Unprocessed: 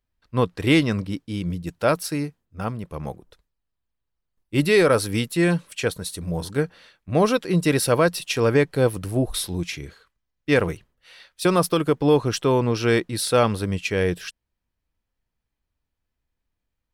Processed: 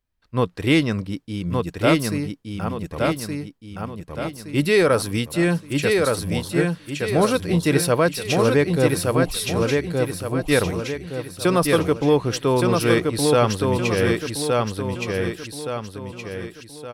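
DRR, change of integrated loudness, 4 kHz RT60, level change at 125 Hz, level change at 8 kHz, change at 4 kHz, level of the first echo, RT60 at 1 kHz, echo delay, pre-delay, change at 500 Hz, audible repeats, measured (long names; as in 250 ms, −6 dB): no reverb audible, +1.0 dB, no reverb audible, +2.0 dB, +2.0 dB, +2.0 dB, −3.0 dB, no reverb audible, 1,169 ms, no reverb audible, +2.0 dB, 5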